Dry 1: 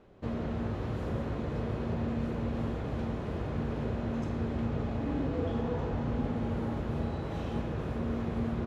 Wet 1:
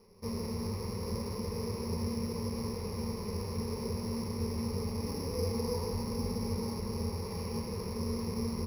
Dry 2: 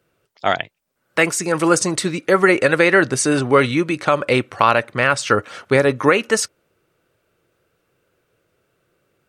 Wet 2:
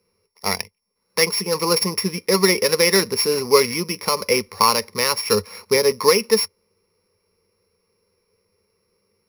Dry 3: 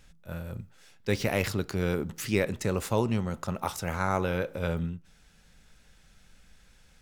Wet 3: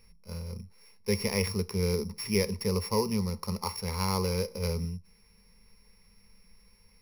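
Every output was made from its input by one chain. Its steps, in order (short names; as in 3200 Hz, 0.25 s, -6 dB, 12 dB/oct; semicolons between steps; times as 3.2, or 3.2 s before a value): sample sorter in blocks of 8 samples; ripple EQ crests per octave 0.86, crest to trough 16 dB; gain -5.5 dB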